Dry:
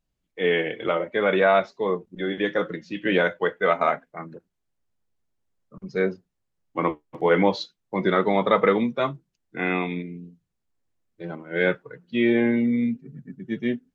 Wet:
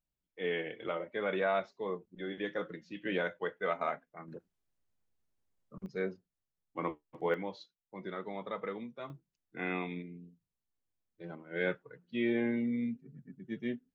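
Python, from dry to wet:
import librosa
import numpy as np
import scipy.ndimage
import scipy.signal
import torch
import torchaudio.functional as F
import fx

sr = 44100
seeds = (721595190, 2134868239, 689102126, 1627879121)

y = fx.gain(x, sr, db=fx.steps((0.0, -12.5), (4.28, -4.5), (5.86, -12.0), (7.34, -20.0), (9.1, -11.0)))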